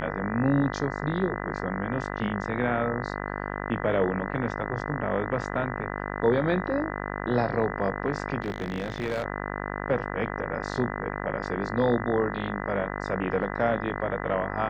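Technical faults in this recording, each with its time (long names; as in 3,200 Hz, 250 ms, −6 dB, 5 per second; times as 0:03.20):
mains buzz 50 Hz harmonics 40 −33 dBFS
0:08.42–0:09.24: clipping −24 dBFS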